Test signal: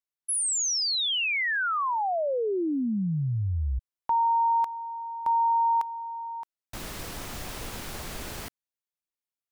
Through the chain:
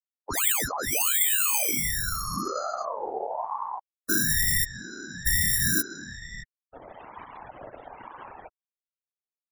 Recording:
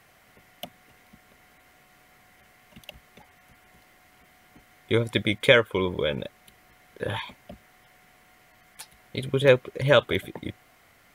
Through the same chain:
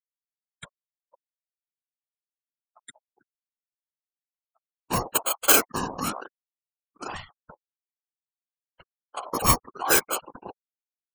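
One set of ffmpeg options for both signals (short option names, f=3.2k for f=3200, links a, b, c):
-af "acrusher=samples=8:mix=1:aa=0.000001,afftfilt=real='re*gte(hypot(re,im),0.0282)':imag='im*gte(hypot(re,im),0.0282)':win_size=1024:overlap=0.75,aexciter=amount=4.3:drive=6.1:freq=5.5k,afftfilt=real='hypot(re,im)*cos(2*PI*random(0))':imag='hypot(re,im)*sin(2*PI*random(1))':win_size=512:overlap=0.75,aeval=exprs='val(0)*sin(2*PI*800*n/s+800*0.25/1.1*sin(2*PI*1.1*n/s))':c=same,volume=4.5dB"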